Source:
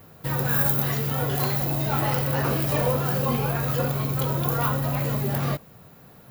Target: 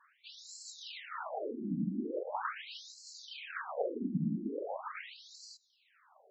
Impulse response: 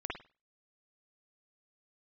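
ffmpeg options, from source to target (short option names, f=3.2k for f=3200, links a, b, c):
-af "equalizer=f=100:w=0.94:g=3.5,afftfilt=real='hypot(re,im)*cos(2*PI*random(0))':imag='hypot(re,im)*sin(2*PI*random(1))':win_size=512:overlap=0.75,afftfilt=real='re*between(b*sr/1024,230*pow(5800/230,0.5+0.5*sin(2*PI*0.41*pts/sr))/1.41,230*pow(5800/230,0.5+0.5*sin(2*PI*0.41*pts/sr))*1.41)':imag='im*between(b*sr/1024,230*pow(5800/230,0.5+0.5*sin(2*PI*0.41*pts/sr))/1.41,230*pow(5800/230,0.5+0.5*sin(2*PI*0.41*pts/sr))*1.41)':win_size=1024:overlap=0.75,volume=1.5dB"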